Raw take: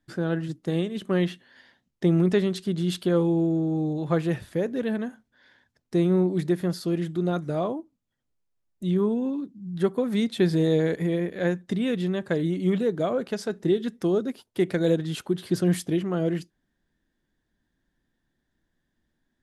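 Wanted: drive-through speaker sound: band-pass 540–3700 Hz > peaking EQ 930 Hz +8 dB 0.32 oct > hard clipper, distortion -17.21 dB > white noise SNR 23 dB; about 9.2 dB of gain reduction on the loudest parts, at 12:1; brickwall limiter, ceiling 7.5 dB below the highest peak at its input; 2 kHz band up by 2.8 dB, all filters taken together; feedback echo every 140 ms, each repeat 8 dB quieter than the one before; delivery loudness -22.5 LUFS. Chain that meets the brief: peaking EQ 2 kHz +3.5 dB; compression 12:1, threshold -26 dBFS; peak limiter -23 dBFS; band-pass 540–3700 Hz; peaking EQ 930 Hz +8 dB 0.32 oct; feedback delay 140 ms, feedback 40%, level -8 dB; hard clipper -31.5 dBFS; white noise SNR 23 dB; trim +17.5 dB

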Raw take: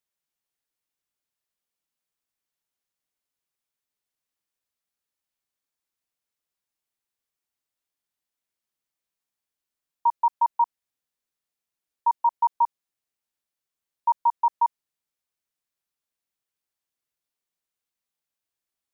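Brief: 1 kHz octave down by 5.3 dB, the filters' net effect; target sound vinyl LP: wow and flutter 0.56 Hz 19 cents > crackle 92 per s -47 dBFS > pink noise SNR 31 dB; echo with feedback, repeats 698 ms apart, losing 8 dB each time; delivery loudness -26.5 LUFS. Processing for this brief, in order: peaking EQ 1 kHz -5.5 dB; feedback delay 698 ms, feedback 40%, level -8 dB; wow and flutter 0.56 Hz 19 cents; crackle 92 per s -47 dBFS; pink noise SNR 31 dB; trim +6.5 dB

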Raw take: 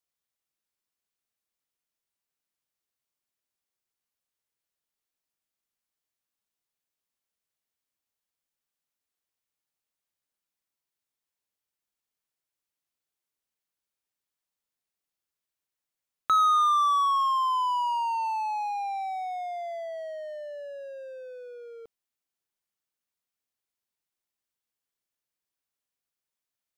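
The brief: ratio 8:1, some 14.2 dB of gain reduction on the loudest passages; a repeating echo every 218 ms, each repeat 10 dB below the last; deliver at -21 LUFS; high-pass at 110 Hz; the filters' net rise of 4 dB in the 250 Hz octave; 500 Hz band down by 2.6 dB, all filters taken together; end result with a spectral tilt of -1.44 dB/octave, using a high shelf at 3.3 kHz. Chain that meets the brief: high-pass 110 Hz; peaking EQ 250 Hz +7 dB; peaking EQ 500 Hz -4.5 dB; treble shelf 3.3 kHz -4.5 dB; compression 8:1, threshold -36 dBFS; feedback delay 218 ms, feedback 32%, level -10 dB; trim +17.5 dB

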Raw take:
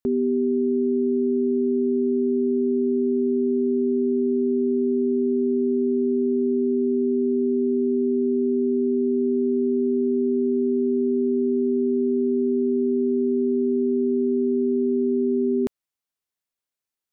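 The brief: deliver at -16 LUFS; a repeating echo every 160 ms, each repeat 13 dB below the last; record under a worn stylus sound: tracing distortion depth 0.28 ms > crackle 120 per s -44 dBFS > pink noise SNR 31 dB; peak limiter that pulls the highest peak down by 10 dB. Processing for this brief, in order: peak limiter -25.5 dBFS; feedback delay 160 ms, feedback 22%, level -13 dB; tracing distortion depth 0.28 ms; crackle 120 per s -44 dBFS; pink noise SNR 31 dB; trim +17 dB

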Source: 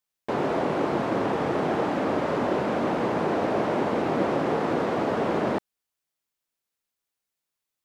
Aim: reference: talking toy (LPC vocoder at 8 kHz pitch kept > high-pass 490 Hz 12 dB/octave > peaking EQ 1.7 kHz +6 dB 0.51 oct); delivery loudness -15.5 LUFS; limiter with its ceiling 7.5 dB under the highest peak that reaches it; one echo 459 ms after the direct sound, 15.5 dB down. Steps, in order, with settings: peak limiter -19.5 dBFS; delay 459 ms -15.5 dB; LPC vocoder at 8 kHz pitch kept; high-pass 490 Hz 12 dB/octave; peaking EQ 1.7 kHz +6 dB 0.51 oct; trim +16.5 dB

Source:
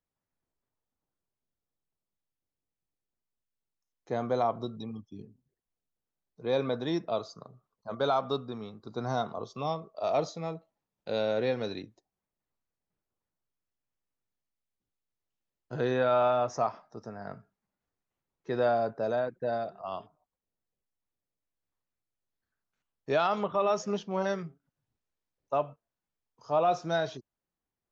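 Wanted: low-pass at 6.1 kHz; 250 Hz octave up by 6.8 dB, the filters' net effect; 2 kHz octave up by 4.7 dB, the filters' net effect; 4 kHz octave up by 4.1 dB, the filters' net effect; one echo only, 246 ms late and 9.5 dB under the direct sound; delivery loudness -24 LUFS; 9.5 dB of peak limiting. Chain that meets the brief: low-pass 6.1 kHz; peaking EQ 250 Hz +8.5 dB; peaking EQ 2 kHz +6 dB; peaking EQ 4 kHz +3.5 dB; peak limiter -22 dBFS; delay 246 ms -9.5 dB; trim +9 dB

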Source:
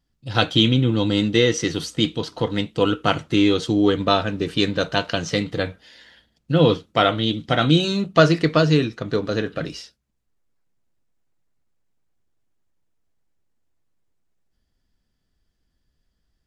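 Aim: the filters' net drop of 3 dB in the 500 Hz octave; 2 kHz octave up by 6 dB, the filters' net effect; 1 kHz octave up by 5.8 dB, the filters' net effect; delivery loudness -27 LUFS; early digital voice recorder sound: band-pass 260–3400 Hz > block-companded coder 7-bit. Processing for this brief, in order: band-pass 260–3400 Hz; peaking EQ 500 Hz -6 dB; peaking EQ 1 kHz +8 dB; peaking EQ 2 kHz +6 dB; block-companded coder 7-bit; trim -6.5 dB

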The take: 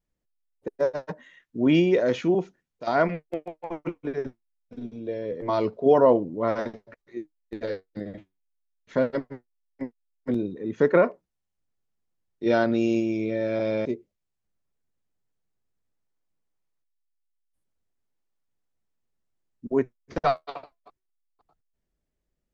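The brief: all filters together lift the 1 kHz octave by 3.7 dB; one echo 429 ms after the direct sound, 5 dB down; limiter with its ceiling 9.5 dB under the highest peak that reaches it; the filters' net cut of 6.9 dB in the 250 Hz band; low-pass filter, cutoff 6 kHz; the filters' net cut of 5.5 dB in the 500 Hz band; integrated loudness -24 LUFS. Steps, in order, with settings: low-pass 6 kHz; peaking EQ 250 Hz -7 dB; peaking EQ 500 Hz -7.5 dB; peaking EQ 1 kHz +8.5 dB; peak limiter -16.5 dBFS; delay 429 ms -5 dB; trim +7.5 dB

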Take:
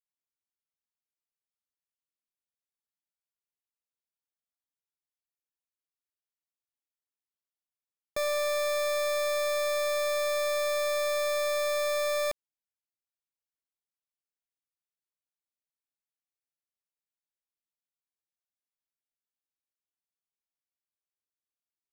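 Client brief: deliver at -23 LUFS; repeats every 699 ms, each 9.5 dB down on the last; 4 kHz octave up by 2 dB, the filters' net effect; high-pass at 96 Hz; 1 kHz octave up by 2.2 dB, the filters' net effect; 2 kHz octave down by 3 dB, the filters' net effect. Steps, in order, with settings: high-pass 96 Hz; peaking EQ 1 kHz +4.5 dB; peaking EQ 2 kHz -5.5 dB; peaking EQ 4 kHz +3.5 dB; feedback delay 699 ms, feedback 33%, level -9.5 dB; trim +6.5 dB

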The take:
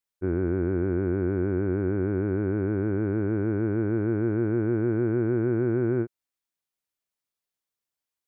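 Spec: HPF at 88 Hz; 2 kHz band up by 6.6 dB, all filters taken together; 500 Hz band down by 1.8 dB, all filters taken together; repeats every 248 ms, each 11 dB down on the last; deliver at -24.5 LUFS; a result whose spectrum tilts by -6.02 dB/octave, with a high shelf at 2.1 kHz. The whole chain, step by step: high-pass 88 Hz; peaking EQ 500 Hz -3.5 dB; peaking EQ 2 kHz +6.5 dB; treble shelf 2.1 kHz +7.5 dB; feedback delay 248 ms, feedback 28%, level -11 dB; trim +2.5 dB

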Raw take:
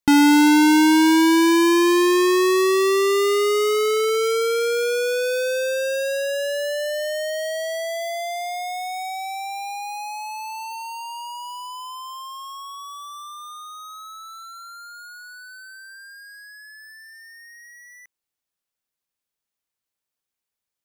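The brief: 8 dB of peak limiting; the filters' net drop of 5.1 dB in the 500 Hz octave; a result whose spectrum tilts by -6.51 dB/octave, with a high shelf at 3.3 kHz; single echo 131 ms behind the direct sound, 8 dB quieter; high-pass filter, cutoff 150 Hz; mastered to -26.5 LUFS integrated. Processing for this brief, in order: high-pass 150 Hz; peaking EQ 500 Hz -7 dB; treble shelf 3.3 kHz -8.5 dB; peak limiter -18 dBFS; delay 131 ms -8 dB; trim -1 dB

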